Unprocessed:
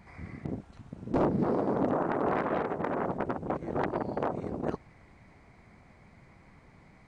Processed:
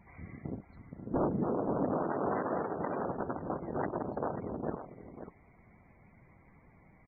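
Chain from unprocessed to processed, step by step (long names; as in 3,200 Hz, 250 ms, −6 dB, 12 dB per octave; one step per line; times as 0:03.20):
single-tap delay 540 ms −10.5 dB
spectral peaks only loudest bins 64
level −4 dB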